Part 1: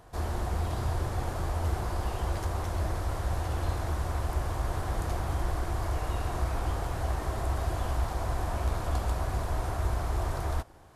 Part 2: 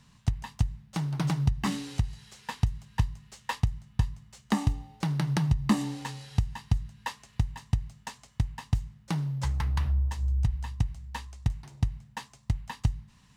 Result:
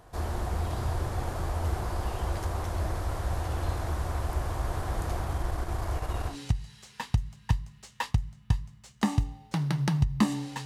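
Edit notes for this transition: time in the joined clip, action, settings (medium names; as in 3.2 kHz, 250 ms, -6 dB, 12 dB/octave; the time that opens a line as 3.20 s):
part 1
5.25–6.37 s: transient shaper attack -1 dB, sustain -6 dB
6.32 s: go over to part 2 from 1.81 s, crossfade 0.10 s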